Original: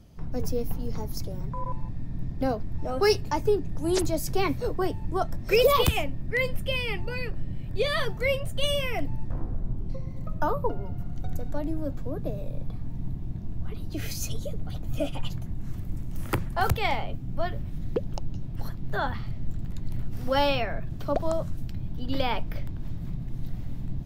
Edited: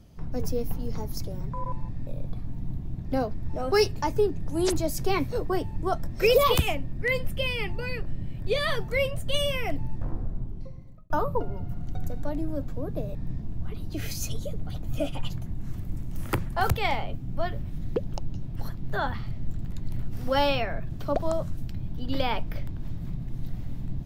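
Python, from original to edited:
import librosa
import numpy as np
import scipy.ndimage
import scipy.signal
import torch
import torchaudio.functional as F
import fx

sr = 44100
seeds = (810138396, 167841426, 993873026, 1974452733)

y = fx.edit(x, sr, fx.swap(start_s=2.07, length_s=0.27, other_s=12.44, other_length_s=0.98),
    fx.fade_out_span(start_s=9.49, length_s=0.9), tone=tone)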